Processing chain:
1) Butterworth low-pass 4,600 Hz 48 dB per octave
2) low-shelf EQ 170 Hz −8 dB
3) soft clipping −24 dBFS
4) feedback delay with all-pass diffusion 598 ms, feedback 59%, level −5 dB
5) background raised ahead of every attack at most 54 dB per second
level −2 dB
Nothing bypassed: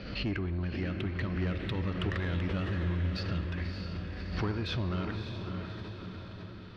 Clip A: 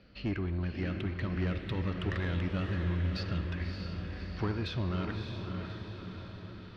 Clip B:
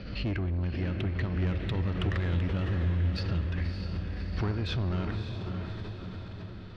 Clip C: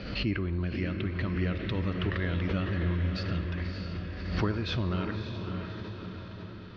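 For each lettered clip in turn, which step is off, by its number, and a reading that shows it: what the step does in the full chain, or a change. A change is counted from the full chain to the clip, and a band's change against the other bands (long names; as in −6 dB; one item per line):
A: 5, 4 kHz band −2.0 dB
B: 2, 125 Hz band +4.0 dB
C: 3, distortion level −15 dB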